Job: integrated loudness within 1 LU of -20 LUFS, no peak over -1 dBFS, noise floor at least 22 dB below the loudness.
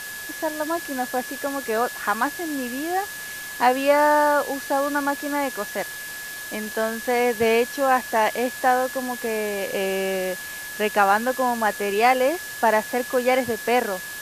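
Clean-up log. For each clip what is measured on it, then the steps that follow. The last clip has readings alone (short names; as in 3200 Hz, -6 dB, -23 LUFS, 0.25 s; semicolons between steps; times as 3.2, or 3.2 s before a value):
steady tone 1700 Hz; tone level -34 dBFS; noise floor -35 dBFS; noise floor target -45 dBFS; loudness -23.0 LUFS; peak -4.0 dBFS; loudness target -20.0 LUFS
-> notch 1700 Hz, Q 30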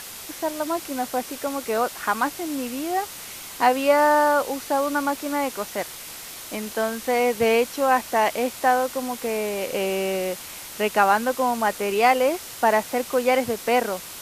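steady tone none; noise floor -38 dBFS; noise floor target -45 dBFS
-> noise print and reduce 7 dB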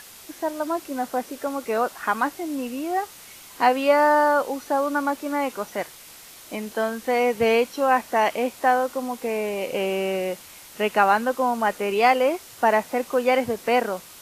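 noise floor -45 dBFS; loudness -23.0 LUFS; peak -4.5 dBFS; loudness target -20.0 LUFS
-> gain +3 dB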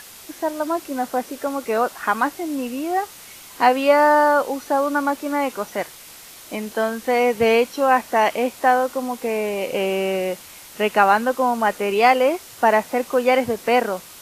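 loudness -20.0 LUFS; peak -1.5 dBFS; noise floor -42 dBFS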